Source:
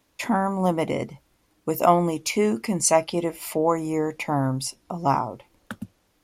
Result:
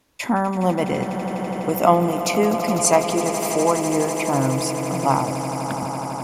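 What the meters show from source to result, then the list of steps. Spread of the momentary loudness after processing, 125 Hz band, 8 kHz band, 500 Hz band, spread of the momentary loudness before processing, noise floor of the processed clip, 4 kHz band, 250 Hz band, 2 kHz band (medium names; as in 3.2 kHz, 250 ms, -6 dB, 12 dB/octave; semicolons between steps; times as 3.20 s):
9 LU, +4.0 dB, +4.0 dB, +4.0 dB, 16 LU, -28 dBFS, +4.0 dB, +3.5 dB, +4.0 dB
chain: wow and flutter 17 cents; echo with a slow build-up 83 ms, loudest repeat 8, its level -14 dB; trim +2 dB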